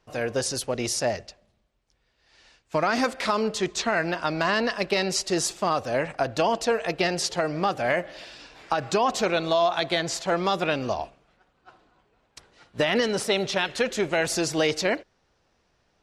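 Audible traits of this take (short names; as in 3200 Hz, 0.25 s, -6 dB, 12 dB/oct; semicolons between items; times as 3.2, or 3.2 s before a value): noise floor -69 dBFS; spectral tilt -3.5 dB/oct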